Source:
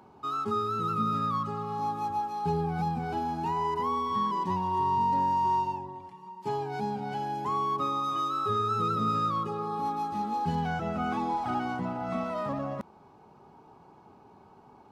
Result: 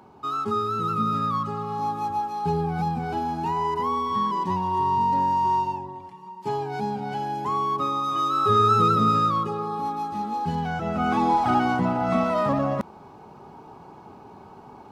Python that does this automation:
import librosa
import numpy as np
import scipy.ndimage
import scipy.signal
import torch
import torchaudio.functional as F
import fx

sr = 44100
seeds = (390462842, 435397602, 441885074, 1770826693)

y = fx.gain(x, sr, db=fx.line((8.07, 4.0), (8.65, 10.5), (9.88, 2.5), (10.72, 2.5), (11.27, 9.5)))